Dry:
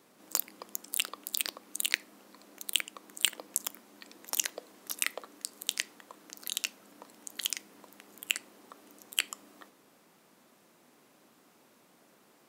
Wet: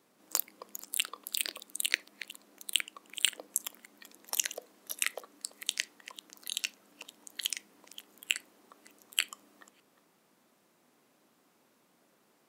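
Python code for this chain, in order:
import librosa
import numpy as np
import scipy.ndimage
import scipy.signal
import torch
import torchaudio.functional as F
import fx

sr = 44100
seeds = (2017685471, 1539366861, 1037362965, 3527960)

y = fx.reverse_delay(x, sr, ms=297, wet_db=-13)
y = fx.noise_reduce_blind(y, sr, reduce_db=6)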